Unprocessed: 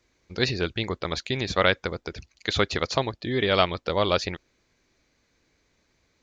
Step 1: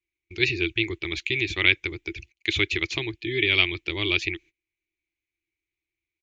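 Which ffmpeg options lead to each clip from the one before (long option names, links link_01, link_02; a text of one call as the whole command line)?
ffmpeg -i in.wav -af "agate=range=-23dB:threshold=-49dB:ratio=16:detection=peak,firequalizer=gain_entry='entry(110,0);entry(230,-19);entry(330,9);entry(510,-20);entry(860,-13);entry(1400,-12);entry(2300,13);entry(4600,-6);entry(6800,-1)':delay=0.05:min_phase=1,volume=-1dB" out.wav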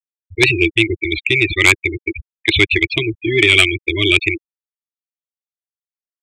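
ffmpeg -i in.wav -af "afftfilt=real='re*gte(hypot(re,im),0.0708)':imag='im*gte(hypot(re,im),0.0708)':win_size=1024:overlap=0.75,aeval=exprs='0.841*sin(PI/2*2.51*val(0)/0.841)':channel_layout=same" out.wav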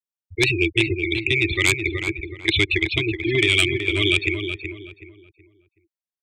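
ffmpeg -i in.wav -filter_complex "[0:a]acrossover=split=300|3000[link_01][link_02][link_03];[link_02]acompressor=threshold=-16dB:ratio=6[link_04];[link_01][link_04][link_03]amix=inputs=3:normalize=0,asplit=2[link_05][link_06];[link_06]adelay=374,lowpass=frequency=2200:poles=1,volume=-6.5dB,asplit=2[link_07][link_08];[link_08]adelay=374,lowpass=frequency=2200:poles=1,volume=0.32,asplit=2[link_09][link_10];[link_10]adelay=374,lowpass=frequency=2200:poles=1,volume=0.32,asplit=2[link_11][link_12];[link_12]adelay=374,lowpass=frequency=2200:poles=1,volume=0.32[link_13];[link_07][link_09][link_11][link_13]amix=inputs=4:normalize=0[link_14];[link_05][link_14]amix=inputs=2:normalize=0,volume=-4dB" out.wav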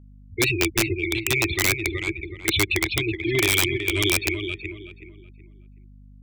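ffmpeg -i in.wav -af "aeval=exprs='val(0)+0.00631*(sin(2*PI*50*n/s)+sin(2*PI*2*50*n/s)/2+sin(2*PI*3*50*n/s)/3+sin(2*PI*4*50*n/s)/4+sin(2*PI*5*50*n/s)/5)':channel_layout=same,aeval=exprs='(mod(2.66*val(0)+1,2)-1)/2.66':channel_layout=same,volume=-2dB" out.wav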